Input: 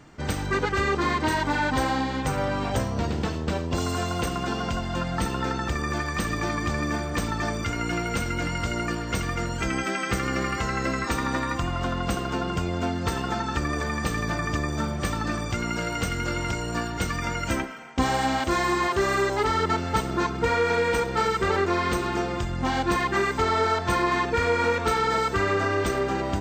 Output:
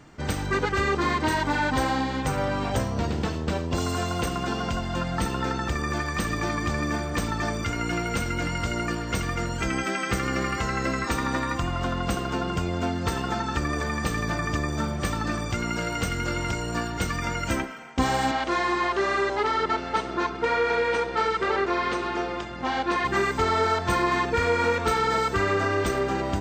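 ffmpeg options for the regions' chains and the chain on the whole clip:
-filter_complex "[0:a]asettb=1/sr,asplit=3[s0][s1][s2];[s0]atrim=end=18.314[s3];[s1]atrim=start=18.31:end=23.05,asetpts=PTS-STARTPTS,afade=t=in:d=0.004:c=qsin,afade=t=out:st=4.736:d=0.004:c=qsin,highpass=310,lowpass=4800,aeval=exprs='val(0)+0.00708*(sin(2*PI*60*n/s)+sin(2*PI*2*60*n/s)/2+sin(2*PI*3*60*n/s)/3+sin(2*PI*4*60*n/s)/4+sin(2*PI*5*60*n/s)/5)':c=same[s4];[s2]atrim=start=23.046[s5];[s3][s4]acrossfade=d=0.004:c1=hsin:c2=qsin[s6];[s6][s5]acrossfade=d=0.004:c1=qsin:c2=hsin"

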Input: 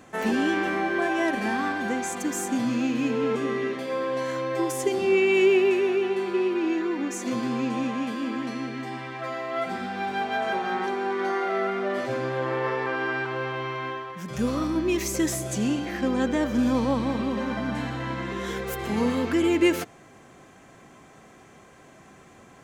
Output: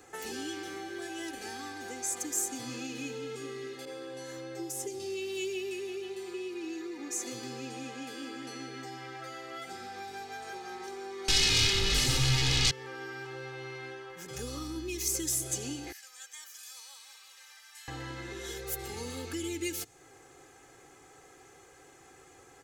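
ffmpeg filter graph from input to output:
-filter_complex "[0:a]asettb=1/sr,asplit=3[s0][s1][s2];[s0]atrim=end=3.854[s3];[s1]atrim=start=3.85:end=5,asetpts=PTS-STARTPTS,afade=t=in:d=0.004:c=qsin,afade=t=out:st=1.146:d=0.004:c=qsin,bandreject=f=4500:w=19,asplit=2[s4][s5];[s5]adelay=18,volume=0.251[s6];[s4][s6]amix=inputs=2:normalize=0,atrim=end_sample=50715,adynamicequalizer=threshold=0.0112:dfrequency=1500:dqfactor=0.7:tfrequency=1500:tqfactor=0.7:attack=5:release=100:ratio=0.375:range=2.5:mode=cutabove:tftype=highshelf[s7];[s2]atrim=start=4.996[s8];[s3][s7]acrossfade=d=0.004:c1=hsin:c2=qsin[s9];[s9][s8]acrossfade=d=0.004:c1=qsin:c2=hsin,asettb=1/sr,asplit=3[s10][s11][s12];[s10]atrim=end=11.284[s13];[s11]atrim=start=11.28:end=12.71,asetpts=PTS-STARTPTS,afade=t=in:d=0.004:c=qsin,afade=t=out:st=1.426:d=0.004:c=qsin,asubboost=boost=10:cutoff=210,acontrast=33,aeval=exprs='0.299*sin(PI/2*4.47*val(0)/0.299)':c=same[s14];[s12]atrim=start=12.706[s15];[s13][s14]acrossfade=d=0.004:c1=hsin:c2=qsin[s16];[s16][s15]acrossfade=d=0.004:c1=qsin:c2=hsin,asettb=1/sr,asplit=3[s17][s18][s19];[s17]atrim=end=15.924[s20];[s18]atrim=start=15.92:end=17.88,asetpts=PTS-STARTPTS,afade=t=in:d=0.004:c=qsin,afade=t=out:st=1.956:d=0.004:c=qsin,highpass=1300,aderivative[s21];[s19]atrim=start=17.876[s22];[s20][s21]acrossfade=d=0.004:c1=hsin:c2=qsin[s23];[s23][s22]acrossfade=d=0.004:c1=qsin:c2=hsin,bass=f=250:g=-3,treble=f=4000:g=7,aecho=1:1:2.4:0.85,acrossover=split=220|3000[s24][s25][s26];[s25]acompressor=threshold=0.02:ratio=10[s27];[s24][s27][s26]amix=inputs=3:normalize=0,volume=0.447"

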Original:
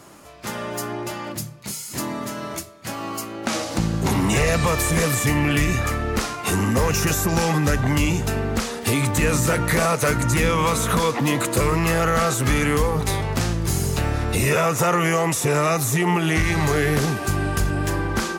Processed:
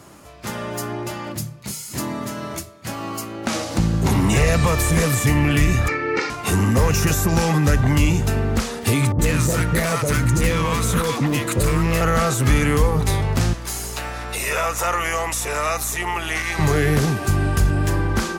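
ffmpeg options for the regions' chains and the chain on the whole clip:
-filter_complex "[0:a]asettb=1/sr,asplit=3[s0][s1][s2];[s0]atrim=end=5.884[s3];[s1]atrim=start=5.88:end=6.3,asetpts=PTS-STARTPTS,afade=t=in:d=0.004:c=qsin,afade=t=out:st=0.416:d=0.004:c=qsin,highpass=f=180:w=0.5412,highpass=f=180:w=1.3066,equalizer=f=280:t=q:w=4:g=5,equalizer=f=630:t=q:w=4:g=-9,equalizer=f=1100:t=q:w=4:g=-5,equalizer=f=2200:t=q:w=4:g=9,equalizer=f=3300:t=q:w=4:g=-10,lowpass=f=5000:w=0.5412,lowpass=f=5000:w=1.3066,aecho=1:1:2.2:0.99,atrim=end_sample=18522[s4];[s2]atrim=start=6.296[s5];[s3][s4]acrossfade=d=0.004:c1=hsin:c2=qsin[s6];[s6][s5]acrossfade=d=0.004:c1=qsin:c2=hsin,asettb=1/sr,asplit=3[s7][s8][s9];[s7]atrim=end=9.124[s10];[s8]atrim=start=9.12:end=12.01,asetpts=PTS-STARTPTS,afade=t=in:d=0.004:c=qsin,afade=t=out:st=2.886:d=0.004:c=qsin,asoftclip=type=hard:threshold=0.158,acrossover=split=800[s11][s12];[s12]adelay=70[s13];[s11][s13]amix=inputs=2:normalize=0,atrim=end_sample=127449[s14];[s9]atrim=start=12.006[s15];[s10][s14]acrossfade=d=0.004:c1=hsin:c2=qsin[s16];[s16][s15]acrossfade=d=0.004:c1=qsin:c2=hsin,asettb=1/sr,asplit=3[s17][s18][s19];[s17]atrim=end=13.534[s20];[s18]atrim=start=13.53:end=16.59,asetpts=PTS-STARTPTS,afade=t=in:d=0.004:c=qsin,afade=t=out:st=3.056:d=0.004:c=qsin,highpass=660,aeval=exprs='val(0)+0.0141*(sin(2*PI*60*n/s)+sin(2*PI*2*60*n/s)/2+sin(2*PI*3*60*n/s)/3+sin(2*PI*4*60*n/s)/4+sin(2*PI*5*60*n/s)/5)':c=same[s21];[s19]atrim=start=16.586[s22];[s20][s21]acrossfade=d=0.004:c1=hsin:c2=qsin[s23];[s23][s22]acrossfade=d=0.004:c1=qsin:c2=hsin,highpass=43,lowshelf=f=110:g=9.5"

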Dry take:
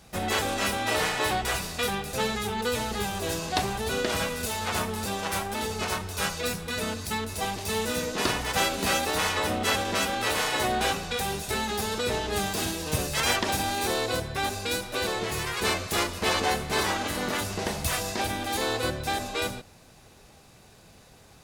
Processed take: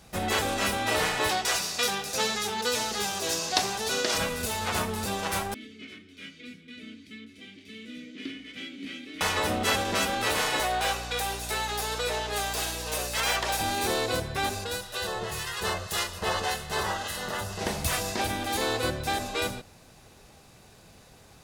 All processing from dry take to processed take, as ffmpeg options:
-filter_complex "[0:a]asettb=1/sr,asplit=3[s0][s1][s2];[s0]atrim=end=1.294[s3];[s1]atrim=start=1.29:end=4.18,asetpts=PTS-STARTPTS,afade=t=in:d=0.004:c=qsin,afade=t=out:st=2.886:d=0.004:c=qsin,highpass=f=340:p=1,equalizer=f=5600:w=1.3:g=8.5,aecho=1:1:83|166|249|332|415:0.0944|0.0548|0.0318|0.0184|0.0107,atrim=end_sample=127449[s4];[s2]atrim=start=4.176[s5];[s3][s4]acrossfade=d=0.004:c1=hsin:c2=qsin[s6];[s6][s5]acrossfade=d=0.004:c1=qsin:c2=hsin,asettb=1/sr,asplit=3[s7][s8][s9];[s7]atrim=end=5.544[s10];[s8]atrim=start=5.54:end=9.21,asetpts=PTS-STARTPTS,afade=t=in:d=0.004:c=qsin,afade=t=out:st=3.666:d=0.004:c=qsin,asplit=3[s11][s12][s13];[s11]bandpass=f=270:t=q:w=8,volume=1[s14];[s12]bandpass=f=2290:t=q:w=8,volume=0.501[s15];[s13]bandpass=f=3010:t=q:w=8,volume=0.355[s16];[s14][s15][s16]amix=inputs=3:normalize=0,asplit=2[s17][s18];[s18]adelay=19,volume=0.251[s19];[s17][s19]amix=inputs=2:normalize=0,atrim=end_sample=161847[s20];[s9]atrim=start=9.206[s21];[s10][s20]acrossfade=d=0.004:c1=hsin:c2=qsin[s22];[s22][s21]acrossfade=d=0.004:c1=qsin:c2=hsin,asettb=1/sr,asplit=3[s23][s24][s25];[s23]atrim=end=10.604[s26];[s24]atrim=start=10.6:end=13.61,asetpts=PTS-STARTPTS,afade=t=in:d=0.004:c=qsin,afade=t=out:st=3.006:d=0.004:c=qsin,highpass=f=460:w=0.5412,highpass=f=460:w=1.3066,aeval=exprs='val(0)+0.0112*(sin(2*PI*60*n/s)+sin(2*PI*2*60*n/s)/2+sin(2*PI*3*60*n/s)/3+sin(2*PI*4*60*n/s)/4+sin(2*PI*5*60*n/s)/5)':c=same,volume=11.9,asoftclip=hard,volume=0.0841[s27];[s25]atrim=start=13.606[s28];[s26][s27]acrossfade=d=0.004:c1=hsin:c2=qsin[s29];[s29][s28]acrossfade=d=0.004:c1=qsin:c2=hsin,asettb=1/sr,asplit=3[s30][s31][s32];[s30]atrim=end=14.644[s33];[s31]atrim=start=14.64:end=17.61,asetpts=PTS-STARTPTS,afade=t=in:d=0.004:c=qsin,afade=t=out:st=2.966:d=0.004:c=qsin,equalizer=f=280:t=o:w=0.57:g=-13.5,acrossover=split=1600[s34][s35];[s34]aeval=exprs='val(0)*(1-0.5/2+0.5/2*cos(2*PI*1.8*n/s))':c=same[s36];[s35]aeval=exprs='val(0)*(1-0.5/2-0.5/2*cos(2*PI*1.8*n/s))':c=same[s37];[s36][s37]amix=inputs=2:normalize=0,asuperstop=centerf=2300:order=8:qfactor=8[s38];[s32]atrim=start=17.606[s39];[s33][s38]acrossfade=d=0.004:c1=hsin:c2=qsin[s40];[s40][s39]acrossfade=d=0.004:c1=qsin:c2=hsin"

